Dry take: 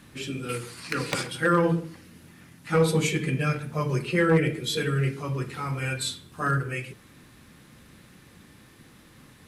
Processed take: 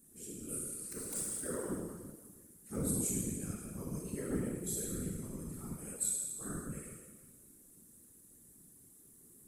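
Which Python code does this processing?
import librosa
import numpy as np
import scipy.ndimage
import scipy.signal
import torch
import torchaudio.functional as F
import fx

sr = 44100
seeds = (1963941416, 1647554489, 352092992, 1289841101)

y = fx.tone_stack(x, sr, knobs='5-5-5')
y = fx.hum_notches(y, sr, base_hz=60, count=10)
y = fx.rev_schroeder(y, sr, rt60_s=1.4, comb_ms=25, drr_db=-2.5)
y = fx.whisperise(y, sr, seeds[0])
y = fx.curve_eq(y, sr, hz=(110.0, 210.0, 430.0, 1000.0, 1600.0, 2400.0, 3400.0, 5000.0, 8200.0), db=(0, 5, 7, -10, -15, -21, -19, -12, 9))
y = y * librosa.db_to_amplitude(-3.5)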